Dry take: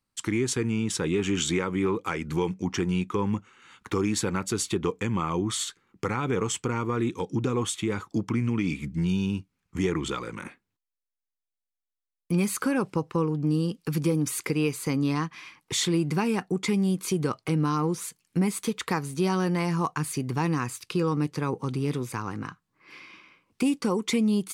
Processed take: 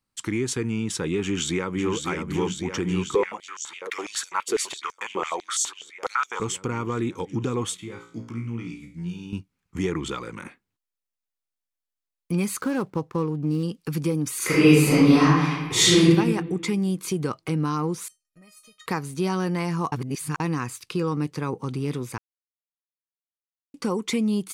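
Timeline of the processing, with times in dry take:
0:01.22–0:01.93: delay throw 550 ms, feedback 80%, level −5.5 dB
0:03.15–0:06.40: high-pass on a step sequencer 12 Hz 460–6,000 Hz
0:07.77–0:09.33: tuned comb filter 58 Hz, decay 0.45 s, mix 90%
0:12.61–0:13.63: running median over 15 samples
0:14.37–0:16.04: thrown reverb, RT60 1.3 s, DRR −11.5 dB
0:18.08–0:18.86: tuned comb filter 620 Hz, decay 0.21 s, mix 100%
0:19.92–0:20.40: reverse
0:22.18–0:23.74: silence

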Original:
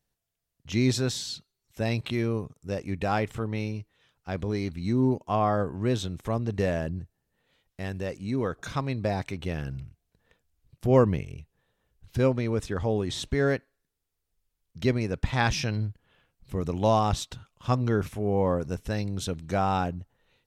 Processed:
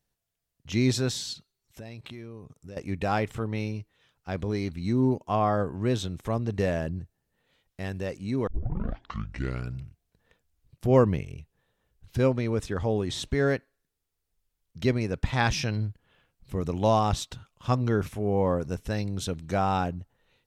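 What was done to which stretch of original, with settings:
0:01.33–0:02.77: downward compressor 4 to 1, threshold −40 dBFS
0:08.47: tape start 1.33 s

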